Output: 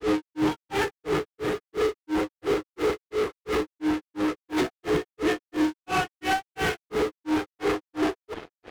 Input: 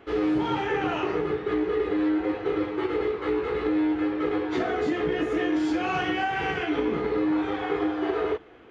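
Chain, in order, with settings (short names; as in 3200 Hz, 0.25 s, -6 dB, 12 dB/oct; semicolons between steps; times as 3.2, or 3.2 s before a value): in parallel at -10.5 dB: fuzz box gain 44 dB, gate -51 dBFS; on the sum: grains 0.223 s, grains 2.9/s, spray 0.135 s, pitch spread up and down by 0 st; gain -2 dB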